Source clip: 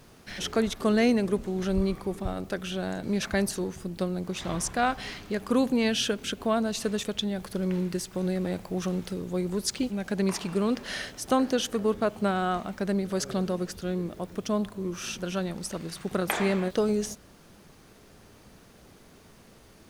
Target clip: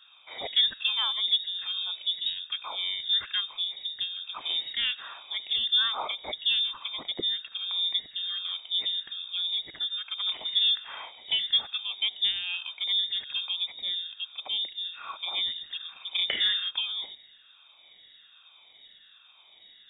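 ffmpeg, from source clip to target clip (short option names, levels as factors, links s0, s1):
-af "afftfilt=real='re*pow(10,18/40*sin(2*PI*(0.94*log(max(b,1)*sr/1024/100)/log(2)-(1.2)*(pts-256)/sr)))':imag='im*pow(10,18/40*sin(2*PI*(0.94*log(max(b,1)*sr/1024/100)/log(2)-(1.2)*(pts-256)/sr)))':win_size=1024:overlap=0.75,adynamicequalizer=threshold=0.00447:dfrequency=1400:dqfactor=4.2:tfrequency=1400:tqfactor=4.2:attack=5:release=100:ratio=0.375:range=2:mode=cutabove:tftype=bell,lowpass=f=3200:t=q:w=0.5098,lowpass=f=3200:t=q:w=0.6013,lowpass=f=3200:t=q:w=0.9,lowpass=f=3200:t=q:w=2.563,afreqshift=-3800,volume=0.562"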